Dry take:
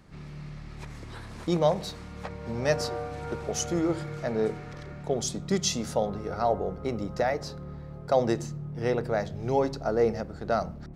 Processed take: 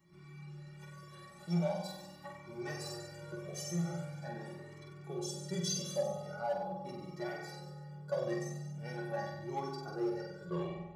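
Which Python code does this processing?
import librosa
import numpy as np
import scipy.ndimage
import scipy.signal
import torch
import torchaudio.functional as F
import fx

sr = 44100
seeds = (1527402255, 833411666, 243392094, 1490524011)

p1 = fx.tape_stop_end(x, sr, length_s=0.56)
p2 = fx.peak_eq(p1, sr, hz=5700.0, db=-6.5, octaves=2.4)
p3 = fx.stiff_resonator(p2, sr, f0_hz=170.0, decay_s=0.33, stiffness=0.03)
p4 = fx.room_flutter(p3, sr, wall_m=8.2, rt60_s=0.99)
p5 = np.clip(10.0 ** (34.5 / 20.0) * p4, -1.0, 1.0) / 10.0 ** (34.5 / 20.0)
p6 = p4 + (p5 * librosa.db_to_amplitude(-8.0))
p7 = scipy.signal.sosfilt(scipy.signal.butter(2, 94.0, 'highpass', fs=sr, output='sos'), p6)
p8 = fx.high_shelf(p7, sr, hz=4300.0, db=7.0)
p9 = fx.comb_cascade(p8, sr, direction='rising', hz=0.42)
y = p9 * librosa.db_to_amplitude(3.5)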